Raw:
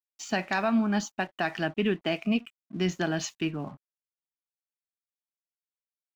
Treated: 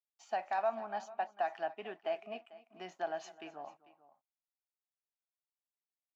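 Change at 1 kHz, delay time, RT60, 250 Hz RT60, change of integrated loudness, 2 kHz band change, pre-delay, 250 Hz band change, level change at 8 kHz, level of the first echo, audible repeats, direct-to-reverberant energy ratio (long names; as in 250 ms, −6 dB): −2.5 dB, 258 ms, no reverb audible, no reverb audible, −10.0 dB, −14.0 dB, no reverb audible, −26.0 dB, can't be measured, −19.5 dB, 2, no reverb audible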